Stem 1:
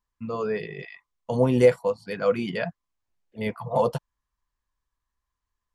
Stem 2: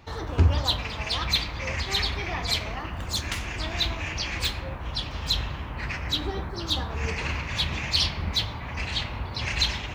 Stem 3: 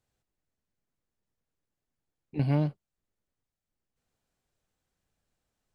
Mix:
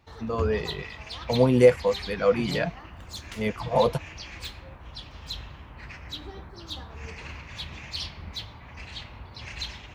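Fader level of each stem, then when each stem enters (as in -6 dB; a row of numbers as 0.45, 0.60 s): +1.0, -10.5, -9.0 dB; 0.00, 0.00, 0.00 s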